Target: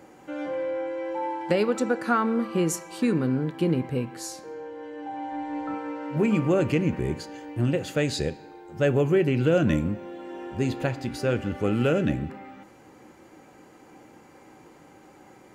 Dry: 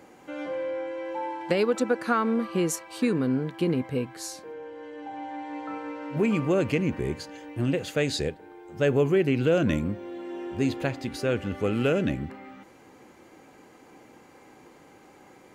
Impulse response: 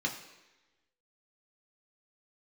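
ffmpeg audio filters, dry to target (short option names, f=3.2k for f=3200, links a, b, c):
-filter_complex "[0:a]asettb=1/sr,asplit=3[a][b][c];[a]atrim=end=5.324[d];[b]atrim=start=5.32:end=5.74,asetpts=PTS-STARTPTS,afade=t=in:d=0.004:c=qsin,afade=t=out:st=0.416:d=0.004:c=qsin,lowshelf=f=140:g=11.5[e];[c]atrim=start=5.736[f];[d][e]acrossfade=d=0.004:c1=hsin:c2=qsin[g];[g][f]acrossfade=d=0.004:c1=qsin:c2=hsin,asplit=2[h][i];[1:a]atrim=start_sample=2205[j];[i][j]afir=irnorm=-1:irlink=0,volume=-15dB[k];[h][k]amix=inputs=2:normalize=0,volume=1dB"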